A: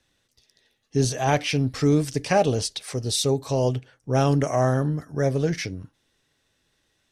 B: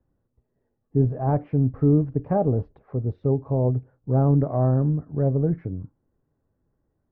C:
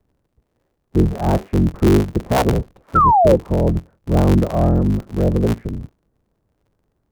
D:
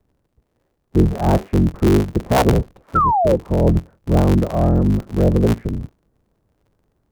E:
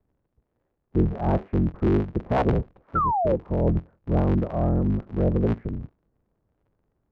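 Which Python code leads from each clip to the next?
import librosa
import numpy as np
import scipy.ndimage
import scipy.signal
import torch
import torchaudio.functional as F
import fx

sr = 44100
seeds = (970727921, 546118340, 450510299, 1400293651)

y1 = scipy.signal.sosfilt(scipy.signal.butter(4, 1200.0, 'lowpass', fs=sr, output='sos'), x)
y1 = fx.low_shelf(y1, sr, hz=440.0, db=12.0)
y1 = F.gain(torch.from_numpy(y1), -7.5).numpy()
y2 = fx.cycle_switch(y1, sr, every=3, mode='inverted')
y2 = fx.spec_paint(y2, sr, seeds[0], shape='fall', start_s=2.95, length_s=0.41, low_hz=490.0, high_hz=1400.0, level_db=-17.0)
y2 = F.gain(torch.from_numpy(y2), 5.0).numpy()
y3 = fx.rider(y2, sr, range_db=10, speed_s=0.5)
y4 = scipy.signal.sosfilt(scipy.signal.butter(2, 2200.0, 'lowpass', fs=sr, output='sos'), y3)
y4 = F.gain(torch.from_numpy(y4), -7.0).numpy()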